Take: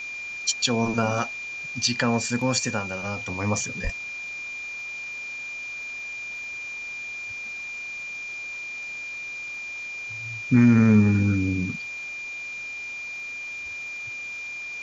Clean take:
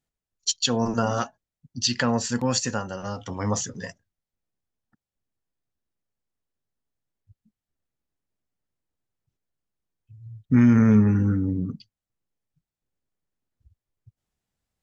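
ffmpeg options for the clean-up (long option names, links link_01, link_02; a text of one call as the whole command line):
ffmpeg -i in.wav -filter_complex "[0:a]adeclick=threshold=4,bandreject=frequency=2400:width=30,asplit=3[link_01][link_02][link_03];[link_01]afade=type=out:start_time=3.83:duration=0.02[link_04];[link_02]highpass=frequency=140:width=0.5412,highpass=frequency=140:width=1.3066,afade=type=in:start_time=3.83:duration=0.02,afade=type=out:start_time=3.95:duration=0.02[link_05];[link_03]afade=type=in:start_time=3.95:duration=0.02[link_06];[link_04][link_05][link_06]amix=inputs=3:normalize=0,afwtdn=0.0063" out.wav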